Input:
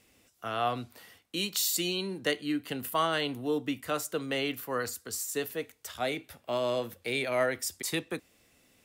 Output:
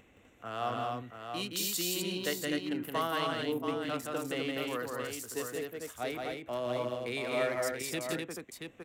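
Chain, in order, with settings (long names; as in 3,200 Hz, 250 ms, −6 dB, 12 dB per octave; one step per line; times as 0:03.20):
adaptive Wiener filter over 9 samples
upward compression, threshold −47 dBFS
multi-tap delay 170/251/680 ms −3.5/−3.5/−6.5 dB
level −5 dB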